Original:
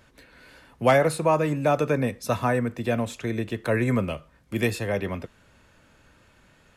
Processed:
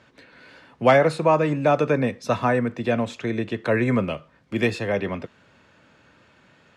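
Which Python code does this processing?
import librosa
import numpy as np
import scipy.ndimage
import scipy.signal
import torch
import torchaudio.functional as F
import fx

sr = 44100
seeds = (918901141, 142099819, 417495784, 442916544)

y = fx.bandpass_edges(x, sr, low_hz=120.0, high_hz=5100.0)
y = F.gain(torch.from_numpy(y), 3.0).numpy()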